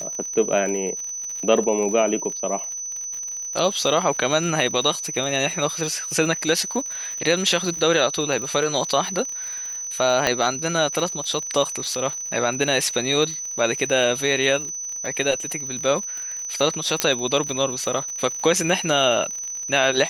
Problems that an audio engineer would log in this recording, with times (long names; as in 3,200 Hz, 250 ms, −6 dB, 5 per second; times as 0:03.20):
surface crackle 65 per second −29 dBFS
whistle 6,000 Hz −28 dBFS
0:10.27: click −5 dBFS
0:17.00: click −1 dBFS